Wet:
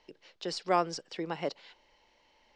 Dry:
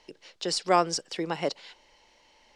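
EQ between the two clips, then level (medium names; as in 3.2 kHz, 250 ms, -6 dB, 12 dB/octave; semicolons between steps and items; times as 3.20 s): distance through air 97 m; -4.5 dB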